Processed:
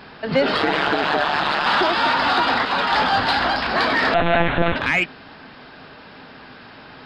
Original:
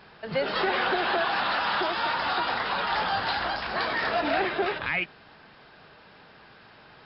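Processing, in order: in parallel at -3 dB: soft clip -24 dBFS, distortion -14 dB; 4.14–4.76 on the sum: monotone LPC vocoder at 8 kHz 170 Hz; bell 260 Hz +10.5 dB 0.25 oct; 0.56–1.66 ring modulator 73 Hz; 2.65–3.28 three-band expander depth 100%; gain +5 dB

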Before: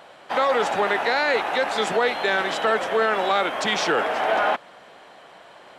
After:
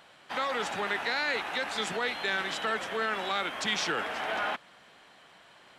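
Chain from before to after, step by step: bell 590 Hz -10 dB 2 oct; gain -4 dB

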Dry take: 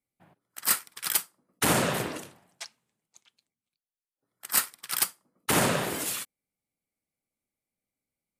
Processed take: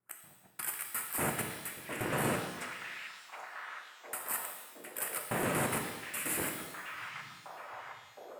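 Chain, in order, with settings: slices in reverse order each 0.118 s, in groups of 5; band shelf 4600 Hz -13 dB 1.2 oct; limiter -20.5 dBFS, peak gain reduction 11 dB; on a send: delay with a stepping band-pass 0.715 s, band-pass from 2500 Hz, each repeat -0.7 oct, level -2.5 dB; on the sum: shimmer reverb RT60 1.1 s, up +12 st, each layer -8 dB, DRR 3 dB; gain -3 dB

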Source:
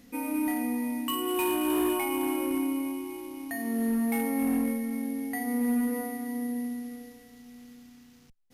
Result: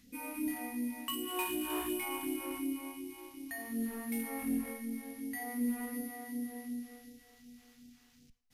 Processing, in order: Schroeder reverb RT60 0.54 s, combs from 33 ms, DRR 15.5 dB; phaser stages 2, 2.7 Hz, lowest notch 150–1100 Hz; gain -5 dB

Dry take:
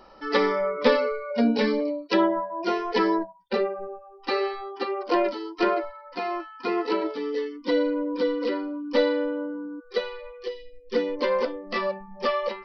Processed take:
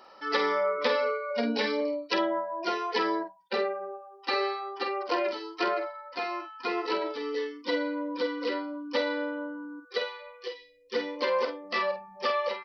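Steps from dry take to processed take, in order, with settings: HPF 790 Hz 6 dB/oct; compressor, threshold -24 dBFS, peak gain reduction 6 dB; doubler 48 ms -8 dB; gain +1 dB

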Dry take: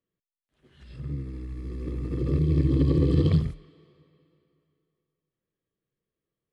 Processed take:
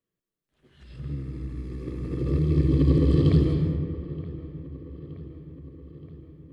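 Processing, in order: dark delay 0.923 s, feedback 61%, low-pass 2400 Hz, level -16 dB; on a send at -3 dB: reverb RT60 2.0 s, pre-delay 0.124 s

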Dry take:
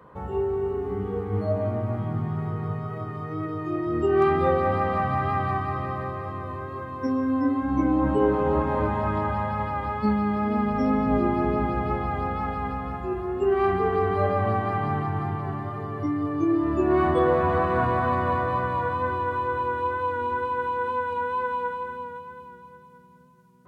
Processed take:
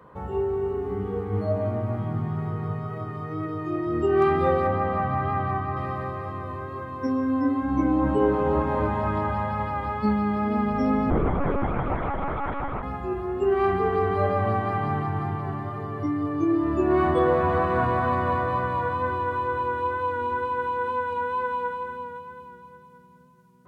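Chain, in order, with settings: 4.67–5.77 LPF 2000 Hz 6 dB/oct; 11.1–12.83 monotone LPC vocoder at 8 kHz 280 Hz

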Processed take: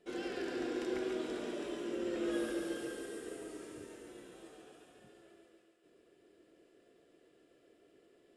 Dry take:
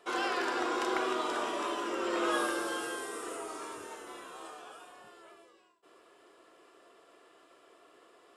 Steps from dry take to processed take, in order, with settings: EQ curve 160 Hz 0 dB, 270 Hz -5 dB, 540 Hz -12 dB, 1100 Hz -30 dB, 1700 Hz -17 dB; thinning echo 0.14 s, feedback 71%, high-pass 300 Hz, level -6 dB; gain +5.5 dB

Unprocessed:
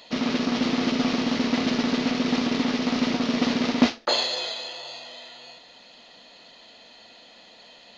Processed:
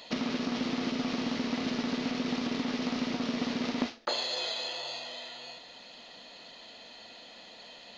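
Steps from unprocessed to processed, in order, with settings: compressor 4:1, threshold -30 dBFS, peak gain reduction 15 dB

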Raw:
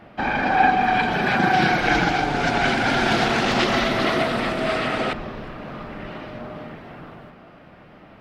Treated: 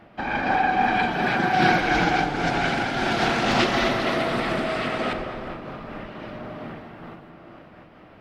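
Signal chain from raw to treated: tape echo 0.207 s, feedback 67%, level -7.5 dB, low-pass 2200 Hz; on a send at -12 dB: reverb RT60 2.8 s, pre-delay 3 ms; on the sum: noise-modulated level, depth 60%

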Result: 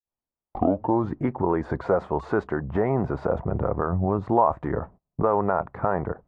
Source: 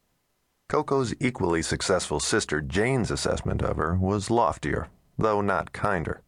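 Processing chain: tape start at the beginning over 1.13 s; gate -45 dBFS, range -23 dB; synth low-pass 940 Hz, resonance Q 1.5

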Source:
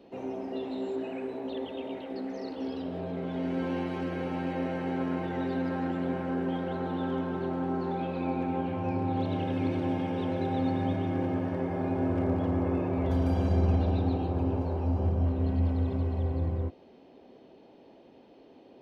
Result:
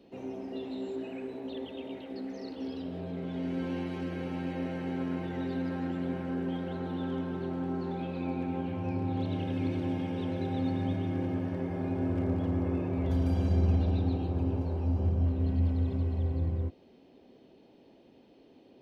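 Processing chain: bell 860 Hz -7 dB 2.4 oct

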